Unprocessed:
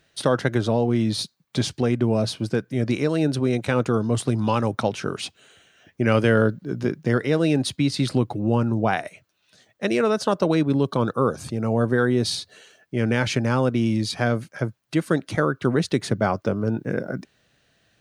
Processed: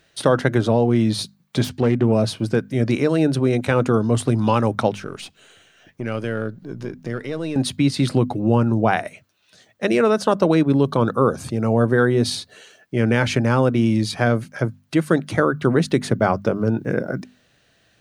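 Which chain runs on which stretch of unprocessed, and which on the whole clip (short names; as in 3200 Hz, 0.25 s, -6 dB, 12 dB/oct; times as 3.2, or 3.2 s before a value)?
1.64–2.12 self-modulated delay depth 0.12 ms + high shelf 4500 Hz -5.5 dB
4.94–7.56 half-wave gain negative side -3 dB + compressor 1.5:1, threshold -42 dBFS
whole clip: notches 50/100/150/200/250 Hz; dynamic EQ 5100 Hz, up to -4 dB, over -42 dBFS, Q 0.82; gain +4 dB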